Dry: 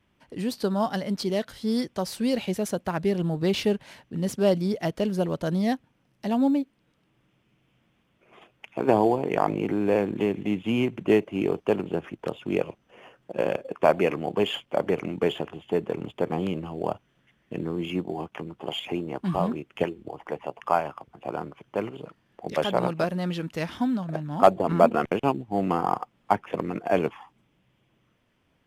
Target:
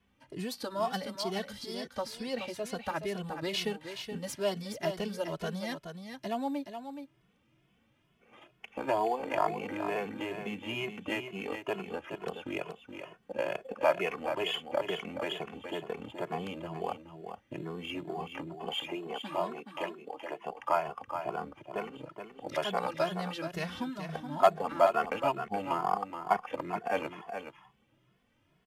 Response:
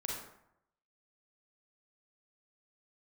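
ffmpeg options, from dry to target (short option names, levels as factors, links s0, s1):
-filter_complex "[0:a]asettb=1/sr,asplit=3[s0][s1][s2];[s0]atrim=end=1.744[s3];[s1]atrim=start=1.74:end=2.75,asetpts=PTS-STARTPTS,afade=t=in:d=0.004:c=qsin,afade=t=out:st=1.006:d=0.004:c=qsin,aemphasis=mode=reproduction:type=cd[s4];[s2]atrim=start=2.746[s5];[s3][s4]acrossfade=d=0.004:c1=hsin:c2=qsin[s6];[s6][s5]acrossfade=d=0.004:c1=qsin:c2=hsin,asettb=1/sr,asplit=3[s7][s8][s9];[s7]atrim=end=18.864[s10];[s8]atrim=start=18.86:end=20.46,asetpts=PTS-STARTPTS,afade=t=in:d=0.004:c=qsin,afade=t=out:st=1.596:d=0.004:c=qsin,highpass=310[s11];[s9]atrim=start=20.456[s12];[s10][s11]acrossfade=d=0.004:c1=hsin:c2=qsin[s13];[s13][s12]acrossfade=d=0.004:c1=qsin:c2=hsin,acrossover=split=630|5600[s14][s15][s16];[s14]acompressor=threshold=0.0178:ratio=6[s17];[s17][s15][s16]amix=inputs=3:normalize=0,aecho=1:1:423:0.398,asplit=2[s18][s19];[s19]adelay=2.3,afreqshift=2.2[s20];[s18][s20]amix=inputs=2:normalize=1"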